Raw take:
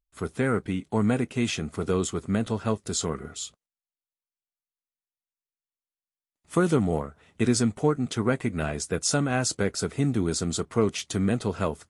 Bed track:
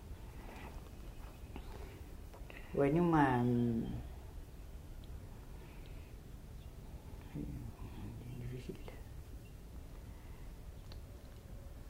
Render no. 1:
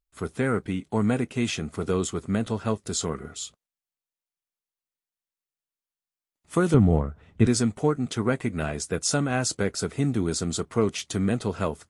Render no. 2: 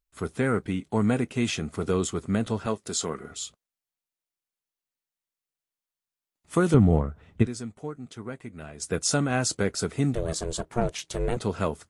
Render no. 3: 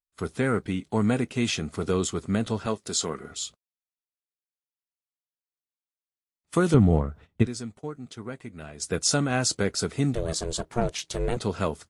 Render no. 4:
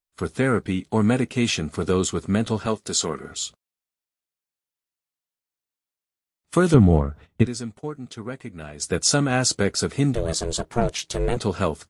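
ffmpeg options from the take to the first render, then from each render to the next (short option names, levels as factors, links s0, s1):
-filter_complex "[0:a]asettb=1/sr,asplit=3[s0][s1][s2];[s0]atrim=end=6.744[s3];[s1]atrim=start=6.74:end=7.47,asetpts=PTS-STARTPTS,afade=t=in:d=0.004:c=qsin,afade=t=out:st=0.726:d=0.004:c=qsin,aemphasis=mode=reproduction:type=bsi[s4];[s2]atrim=start=7.466[s5];[s3][s4]acrossfade=d=0.004:c1=hsin:c2=qsin[s6];[s6][s5]acrossfade=d=0.004:c1=qsin:c2=hsin"
-filter_complex "[0:a]asettb=1/sr,asplit=3[s0][s1][s2];[s0]atrim=end=2.664[s3];[s1]atrim=start=2.66:end=3.31,asetpts=PTS-STARTPTS,afade=t=in:d=0.004:c=qsin,afade=t=out:st=0.646:d=0.004:c=qsin,highpass=f=240:p=1[s4];[s2]atrim=start=3.306[s5];[s3][s4]acrossfade=d=0.004:c1=hsin:c2=qsin[s6];[s6][s5]acrossfade=d=0.004:c1=qsin:c2=hsin,asettb=1/sr,asplit=3[s7][s8][s9];[s7]atrim=end=10.154[s10];[s8]atrim=start=10.15:end=11.37,asetpts=PTS-STARTPTS,afade=t=in:d=0.004:c=qsin,afade=t=out:st=1.216:d=0.004:c=qsin,aeval=exprs='val(0)*sin(2*PI*240*n/s)':c=same[s11];[s9]atrim=start=11.366[s12];[s10][s11]acrossfade=d=0.004:c1=hsin:c2=qsin[s13];[s13][s12]acrossfade=d=0.004:c1=qsin:c2=hsin,asplit=3[s14][s15][s16];[s14]atrim=end=7.58,asetpts=PTS-STARTPTS,afade=t=out:st=7.42:d=0.16:c=exp:silence=0.237137[s17];[s15]atrim=start=7.58:end=8.67,asetpts=PTS-STARTPTS,volume=0.237[s18];[s16]atrim=start=8.67,asetpts=PTS-STARTPTS,afade=t=in:d=0.16:c=exp:silence=0.237137[s19];[s17][s18][s19]concat=n=3:v=0:a=1"
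-af "agate=range=0.126:threshold=0.00501:ratio=16:detection=peak,equalizer=f=4500:w=1.2:g=4"
-af "volume=1.58,alimiter=limit=0.708:level=0:latency=1"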